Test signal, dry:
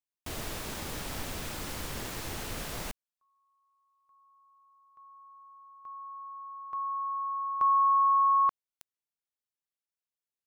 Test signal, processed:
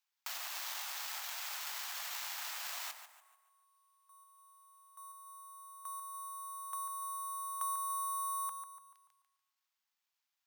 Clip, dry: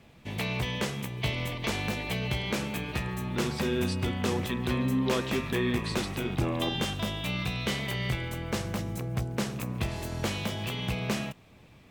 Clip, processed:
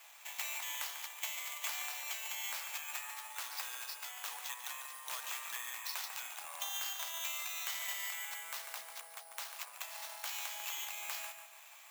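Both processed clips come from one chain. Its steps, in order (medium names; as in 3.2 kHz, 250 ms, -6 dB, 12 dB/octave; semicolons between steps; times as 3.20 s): compression 2.5:1, threshold -45 dBFS; filtered feedback delay 145 ms, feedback 44%, low-pass 3.5 kHz, level -7 dB; sample-rate reducer 9.8 kHz, jitter 0%; steep high-pass 760 Hz 36 dB/octave; treble shelf 6.1 kHz +11 dB; trim +2 dB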